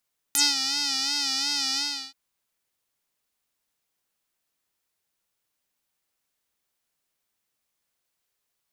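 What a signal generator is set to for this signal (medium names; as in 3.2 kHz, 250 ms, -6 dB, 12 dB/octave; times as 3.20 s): synth patch with vibrato C#4, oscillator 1 square, oscillator 2 saw, interval -12 st, detune 16 cents, oscillator 2 level -14.5 dB, sub -17.5 dB, filter bandpass, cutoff 4.5 kHz, Q 4.5, filter envelope 1.5 oct, filter decay 0.06 s, filter sustain 10%, attack 1.1 ms, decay 0.19 s, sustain -9.5 dB, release 0.35 s, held 1.43 s, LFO 2.8 Hz, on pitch 77 cents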